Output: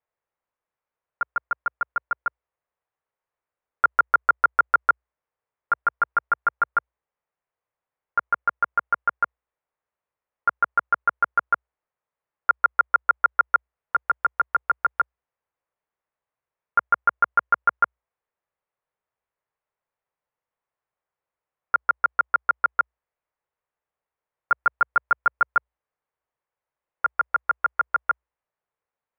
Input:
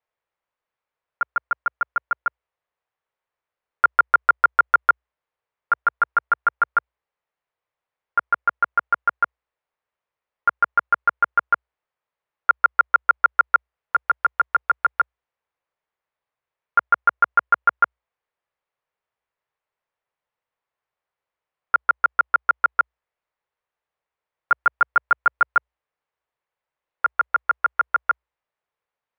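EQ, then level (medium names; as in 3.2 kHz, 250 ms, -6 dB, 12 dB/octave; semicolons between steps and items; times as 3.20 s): distance through air 400 m; 0.0 dB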